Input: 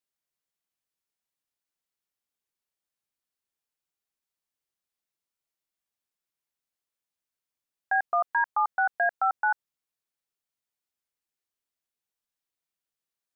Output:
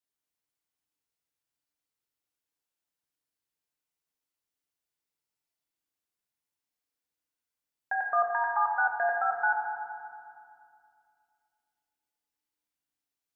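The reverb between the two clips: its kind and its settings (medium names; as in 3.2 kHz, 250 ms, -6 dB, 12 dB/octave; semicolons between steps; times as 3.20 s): FDN reverb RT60 2.3 s, low-frequency decay 1.55×, high-frequency decay 0.8×, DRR -0.5 dB; trim -3.5 dB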